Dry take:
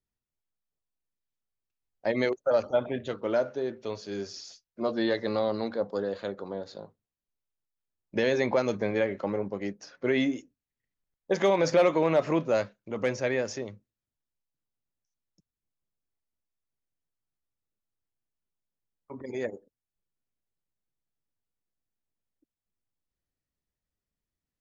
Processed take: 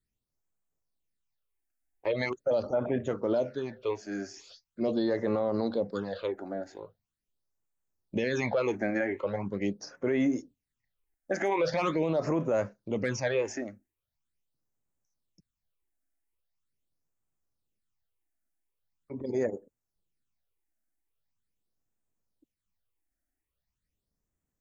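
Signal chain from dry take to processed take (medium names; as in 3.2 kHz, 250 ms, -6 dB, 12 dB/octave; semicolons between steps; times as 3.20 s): phase shifter stages 8, 0.42 Hz, lowest notch 130–4400 Hz; peak limiter -23.5 dBFS, peak gain reduction 9.5 dB; trim +4 dB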